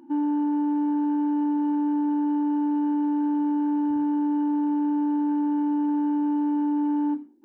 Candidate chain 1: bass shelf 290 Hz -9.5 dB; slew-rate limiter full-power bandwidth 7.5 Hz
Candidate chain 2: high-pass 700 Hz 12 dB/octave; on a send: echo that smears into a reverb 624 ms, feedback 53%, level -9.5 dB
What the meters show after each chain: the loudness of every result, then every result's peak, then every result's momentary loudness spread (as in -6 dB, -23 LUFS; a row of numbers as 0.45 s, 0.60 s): -33.5 LUFS, -35.5 LUFS; -27.0 dBFS, -26.0 dBFS; 0 LU, 2 LU